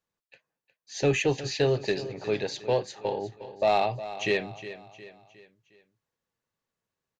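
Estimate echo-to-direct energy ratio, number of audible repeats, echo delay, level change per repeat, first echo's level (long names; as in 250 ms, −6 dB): −13.0 dB, 4, 360 ms, −7.0 dB, −14.0 dB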